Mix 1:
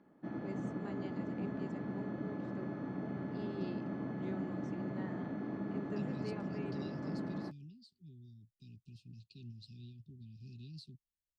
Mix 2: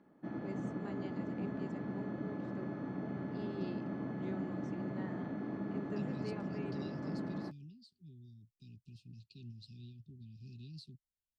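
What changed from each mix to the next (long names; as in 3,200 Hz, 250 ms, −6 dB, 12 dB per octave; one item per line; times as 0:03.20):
nothing changed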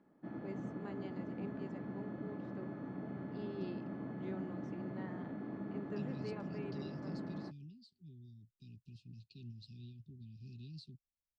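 second voice: add high-shelf EQ 7,500 Hz +8 dB
background −3.5 dB
master: add high-frequency loss of the air 93 metres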